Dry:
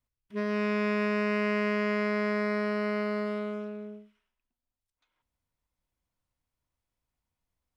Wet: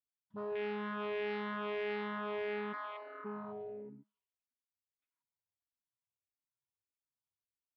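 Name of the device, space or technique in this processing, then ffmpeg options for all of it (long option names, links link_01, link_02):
barber-pole phaser into a guitar amplifier: -filter_complex "[0:a]asplit=3[link_01][link_02][link_03];[link_01]afade=type=out:start_time=2.72:duration=0.02[link_04];[link_02]highpass=frequency=710:width=0.5412,highpass=frequency=710:width=1.3066,afade=type=in:start_time=2.72:duration=0.02,afade=type=out:start_time=3.24:duration=0.02[link_05];[link_03]afade=type=in:start_time=3.24:duration=0.02[link_06];[link_04][link_05][link_06]amix=inputs=3:normalize=0,afwtdn=0.02,asplit=2[link_07][link_08];[link_08]afreqshift=-1.6[link_09];[link_07][link_09]amix=inputs=2:normalize=1,asoftclip=type=tanh:threshold=-29dB,highpass=75,equalizer=frequency=100:width_type=q:width=4:gain=7,equalizer=frequency=180:width_type=q:width=4:gain=-3,equalizer=frequency=500:width_type=q:width=4:gain=-5,equalizer=frequency=960:width_type=q:width=4:gain=6,lowpass=frequency=3900:width=0.5412,lowpass=frequency=3900:width=1.3066,aecho=1:1:7.1:0.43,volume=-2.5dB"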